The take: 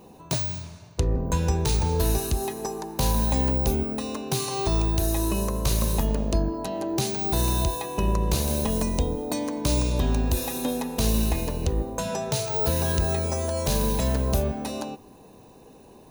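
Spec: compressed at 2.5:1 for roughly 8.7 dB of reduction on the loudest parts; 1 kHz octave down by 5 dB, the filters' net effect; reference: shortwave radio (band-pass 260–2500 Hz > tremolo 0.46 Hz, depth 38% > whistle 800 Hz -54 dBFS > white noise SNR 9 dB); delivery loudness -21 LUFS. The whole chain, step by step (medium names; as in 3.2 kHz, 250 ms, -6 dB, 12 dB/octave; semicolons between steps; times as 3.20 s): peaking EQ 1 kHz -6 dB; compression 2.5:1, threshold -32 dBFS; band-pass 260–2500 Hz; tremolo 0.46 Hz, depth 38%; whistle 800 Hz -54 dBFS; white noise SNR 9 dB; trim +19 dB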